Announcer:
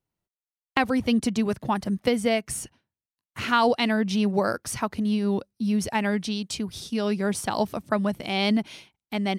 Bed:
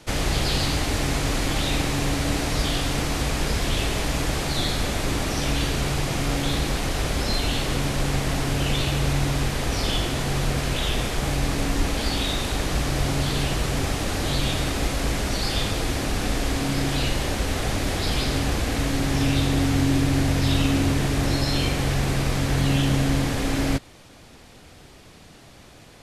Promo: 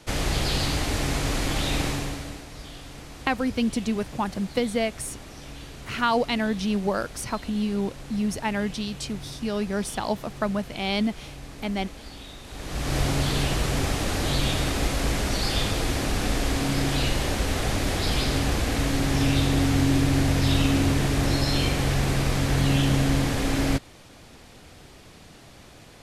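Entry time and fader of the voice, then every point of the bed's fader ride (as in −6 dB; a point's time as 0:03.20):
2.50 s, −2.0 dB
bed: 0:01.88 −2 dB
0:02.46 −17 dB
0:12.43 −17 dB
0:12.95 −0.5 dB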